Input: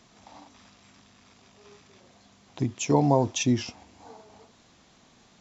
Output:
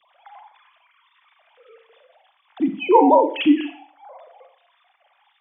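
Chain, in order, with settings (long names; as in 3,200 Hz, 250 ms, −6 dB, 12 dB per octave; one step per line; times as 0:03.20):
three sine waves on the formant tracks
four-comb reverb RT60 0.44 s, combs from 33 ms, DRR 6.5 dB
level +7 dB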